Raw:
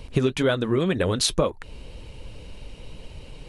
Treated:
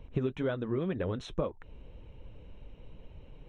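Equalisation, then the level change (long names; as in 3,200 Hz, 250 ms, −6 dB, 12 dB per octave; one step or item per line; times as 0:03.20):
Butterworth band-reject 4,700 Hz, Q 4
head-to-tape spacing loss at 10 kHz 31 dB
−8.5 dB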